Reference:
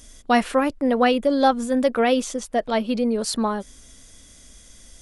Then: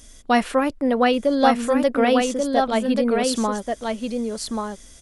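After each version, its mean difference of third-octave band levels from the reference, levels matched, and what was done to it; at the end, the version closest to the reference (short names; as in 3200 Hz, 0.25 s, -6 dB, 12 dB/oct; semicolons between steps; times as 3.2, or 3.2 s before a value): 5.0 dB: echo 1.135 s -4 dB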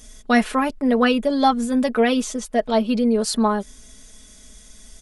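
1.5 dB: comb 4.7 ms, depth 67%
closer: second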